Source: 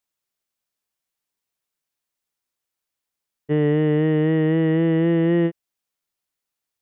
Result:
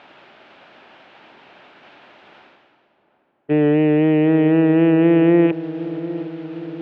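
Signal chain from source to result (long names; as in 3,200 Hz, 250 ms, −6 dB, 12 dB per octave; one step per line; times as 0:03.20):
loose part that buzzes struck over −35 dBFS, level −27 dBFS
spectral tilt −3.5 dB per octave
reversed playback
upward compression, threshold −14 dBFS
reversed playback
loudspeaker in its box 450–3,000 Hz, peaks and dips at 470 Hz −7 dB, 1,100 Hz −6 dB, 2,000 Hz −4 dB
feedback echo with a low-pass in the loop 757 ms, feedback 67%, low-pass 960 Hz, level −13.5 dB
level +8 dB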